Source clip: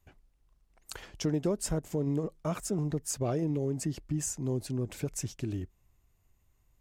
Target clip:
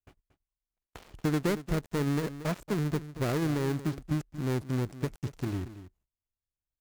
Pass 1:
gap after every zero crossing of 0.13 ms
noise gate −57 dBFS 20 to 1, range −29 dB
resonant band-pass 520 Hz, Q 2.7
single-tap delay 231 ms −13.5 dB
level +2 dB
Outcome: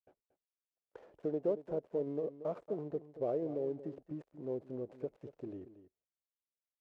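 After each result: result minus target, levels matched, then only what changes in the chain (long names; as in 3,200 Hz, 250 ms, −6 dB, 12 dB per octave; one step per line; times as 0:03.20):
500 Hz band +6.5 dB; gap after every zero crossing: distortion −4 dB
remove: resonant band-pass 520 Hz, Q 2.7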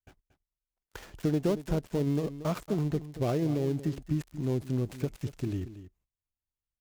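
gap after every zero crossing: distortion −4 dB
change: gap after every zero crossing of 0.41 ms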